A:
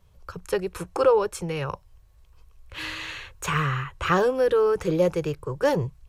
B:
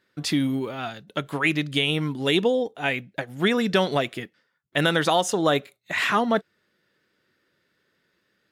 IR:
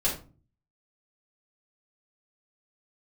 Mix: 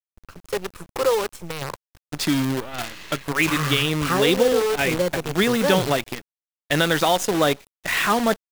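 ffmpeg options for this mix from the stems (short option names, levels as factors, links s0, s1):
-filter_complex "[0:a]volume=0.841[s0];[1:a]adelay=1950,volume=1.19[s1];[s0][s1]amix=inputs=2:normalize=0,acrusher=bits=5:dc=4:mix=0:aa=0.000001"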